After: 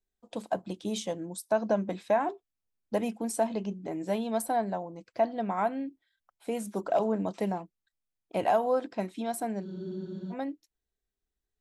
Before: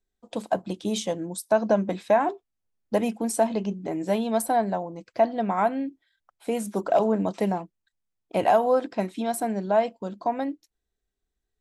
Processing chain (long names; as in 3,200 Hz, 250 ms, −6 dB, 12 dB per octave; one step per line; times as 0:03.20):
frozen spectrum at 0:09.67, 0.66 s
level −5.5 dB